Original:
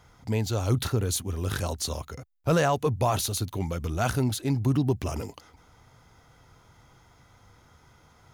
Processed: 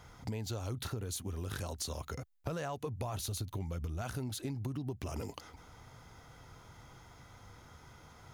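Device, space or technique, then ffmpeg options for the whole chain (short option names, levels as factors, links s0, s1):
serial compression, peaks first: -filter_complex "[0:a]asettb=1/sr,asplit=3[s0][s1][s2];[s0]atrim=end=3.044[s3];[s1]atrim=start=3.04:end=4.02,asetpts=PTS-STARTPTS,afade=t=in:d=0.004:c=qsin,afade=t=out:st=0.976:d=0.004:c=qsin,lowshelf=f=110:g=10.5[s4];[s2]atrim=start=4.016[s5];[s3][s4]acrossfade=d=0.004:c1=hsin:c2=qsin[s6];[s6][s5]acrossfade=d=0.004:c1=qsin:c2=hsin,acompressor=threshold=0.0251:ratio=5,acompressor=threshold=0.0112:ratio=2.5,volume=1.19"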